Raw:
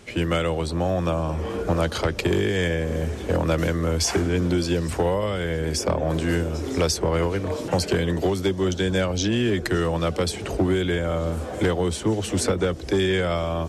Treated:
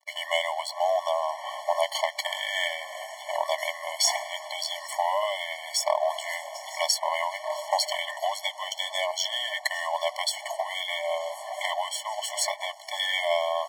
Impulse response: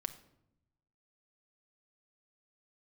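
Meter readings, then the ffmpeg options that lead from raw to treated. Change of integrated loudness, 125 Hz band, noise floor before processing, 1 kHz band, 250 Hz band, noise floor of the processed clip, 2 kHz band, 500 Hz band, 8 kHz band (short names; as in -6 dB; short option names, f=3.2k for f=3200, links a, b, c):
-4.5 dB, under -40 dB, -33 dBFS, +3.0 dB, under -40 dB, -43 dBFS, -0.5 dB, -6.0 dB, 0.0 dB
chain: -af "aeval=exprs='sgn(val(0))*max(abs(val(0))-0.00891,0)':c=same,afftfilt=real='re*eq(mod(floor(b*sr/1024/580),2),1)':imag='im*eq(mod(floor(b*sr/1024/580),2),1)':win_size=1024:overlap=0.75,volume=5dB"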